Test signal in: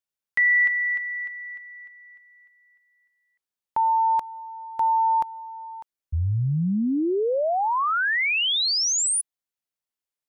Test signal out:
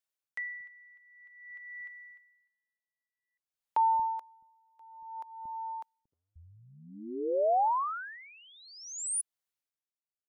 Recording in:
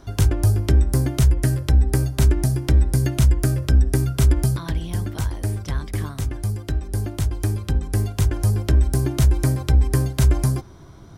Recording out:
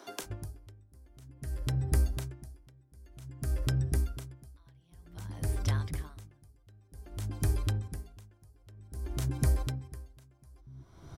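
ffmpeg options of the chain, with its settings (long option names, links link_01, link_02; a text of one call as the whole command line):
ffmpeg -i in.wav -filter_complex "[0:a]acompressor=threshold=-21dB:ratio=6:attack=0.52:release=321:knee=6:detection=rms,acrossover=split=300[link_01][link_02];[link_01]adelay=230[link_03];[link_03][link_02]amix=inputs=2:normalize=0,aeval=exprs='val(0)*pow(10,-31*(0.5-0.5*cos(2*PI*0.53*n/s))/20)':channel_layout=same" out.wav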